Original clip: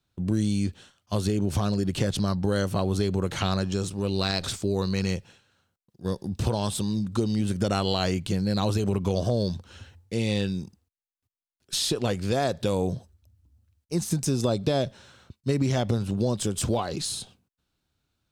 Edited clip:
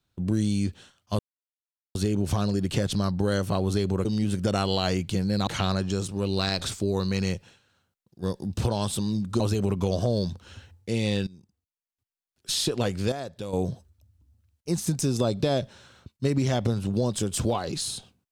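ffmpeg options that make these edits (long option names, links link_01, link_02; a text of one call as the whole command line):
ffmpeg -i in.wav -filter_complex "[0:a]asplit=8[link_01][link_02][link_03][link_04][link_05][link_06][link_07][link_08];[link_01]atrim=end=1.19,asetpts=PTS-STARTPTS,afade=type=out:start_time=1.186:duration=0.004:curve=hsin,apad=pad_dur=0.76[link_09];[link_02]atrim=start=1.19:end=3.292,asetpts=PTS-STARTPTS,afade=type=in:duration=0.004:curve=hsin[link_10];[link_03]atrim=start=7.218:end=8.642[link_11];[link_04]atrim=start=3.288:end=7.222[link_12];[link_05]atrim=start=8.638:end=10.51,asetpts=PTS-STARTPTS,afade=type=out:start_time=1.868:duration=0.004:curve=hsin:silence=0.0891251[link_13];[link_06]atrim=start=10.51:end=12.362,asetpts=PTS-STARTPTS,afade=type=in:duration=1.29:silence=0.0891251[link_14];[link_07]atrim=start=12.358:end=12.772,asetpts=PTS-STARTPTS,volume=-9.5dB[link_15];[link_08]atrim=start=12.768[link_16];[link_09][link_10]concat=n=2:v=0:a=1[link_17];[link_17][link_11]acrossfade=duration=0.004:curve1=hsin:curve2=hsin[link_18];[link_18][link_12]acrossfade=duration=0.004:curve1=hsin:curve2=hsin[link_19];[link_13][link_14]concat=n=2:v=0:a=1[link_20];[link_19][link_20]acrossfade=duration=0.004:curve1=hsin:curve2=hsin[link_21];[link_21][link_15]acrossfade=duration=0.004:curve1=hsin:curve2=hsin[link_22];[link_22][link_16]acrossfade=duration=0.004:curve1=hsin:curve2=hsin" out.wav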